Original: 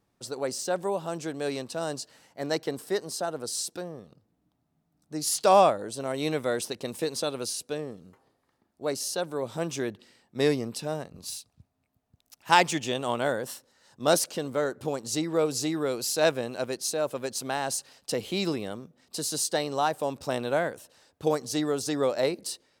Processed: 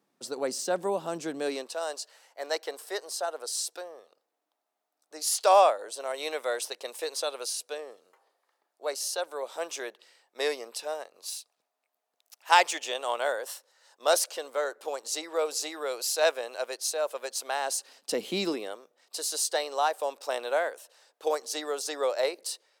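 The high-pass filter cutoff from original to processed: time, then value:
high-pass filter 24 dB per octave
0:01.37 190 Hz
0:01.79 490 Hz
0:17.51 490 Hz
0:18.34 180 Hz
0:18.78 460 Hz

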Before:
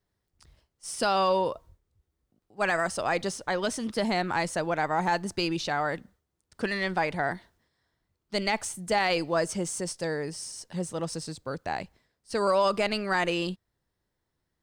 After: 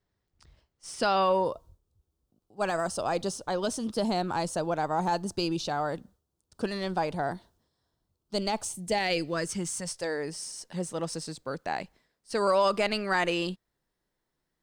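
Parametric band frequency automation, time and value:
parametric band −13.5 dB 0.74 octaves
0:01.08 12,000 Hz
0:01.53 2,000 Hz
0:08.59 2,000 Hz
0:09.73 500 Hz
0:10.31 85 Hz

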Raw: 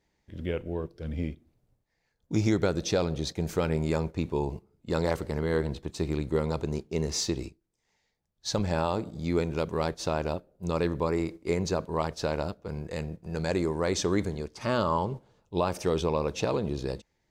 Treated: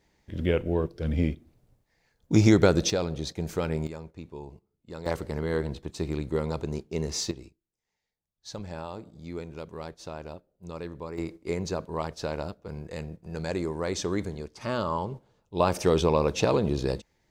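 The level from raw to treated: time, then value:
+6.5 dB
from 0:02.90 −1.5 dB
from 0:03.87 −12 dB
from 0:05.06 −1 dB
from 0:07.31 −10 dB
from 0:11.18 −2.5 dB
from 0:15.60 +4.5 dB

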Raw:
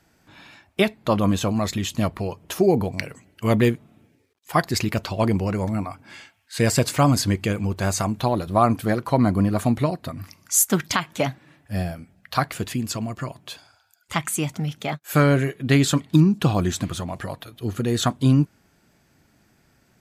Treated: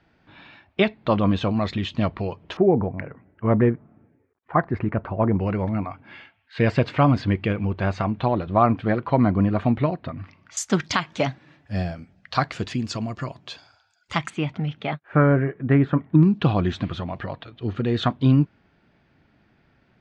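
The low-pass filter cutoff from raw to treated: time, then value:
low-pass filter 24 dB per octave
3,900 Hz
from 0:02.57 1,700 Hz
from 0:05.40 3,200 Hz
from 0:10.57 5,800 Hz
from 0:14.30 3,400 Hz
from 0:15.03 1,800 Hz
from 0:16.23 3,700 Hz

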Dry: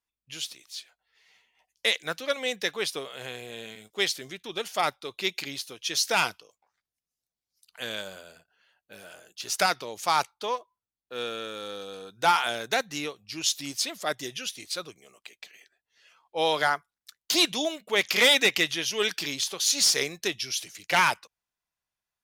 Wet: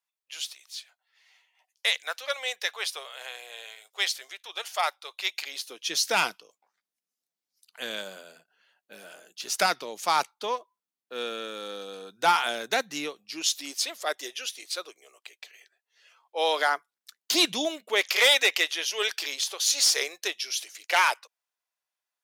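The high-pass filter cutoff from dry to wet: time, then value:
high-pass filter 24 dB per octave
0:05.42 620 Hz
0:05.90 180 Hz
0:13.01 180 Hz
0:13.92 390 Hz
0:16.43 390 Hz
0:17.56 140 Hz
0:18.10 440 Hz

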